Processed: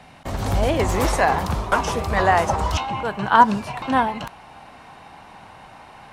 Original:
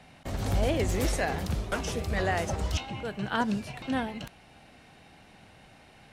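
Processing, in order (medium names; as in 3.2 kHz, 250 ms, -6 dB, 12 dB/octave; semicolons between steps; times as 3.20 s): peaking EQ 1 kHz +6.5 dB 0.91 oct, from 0.79 s +15 dB; trim +5.5 dB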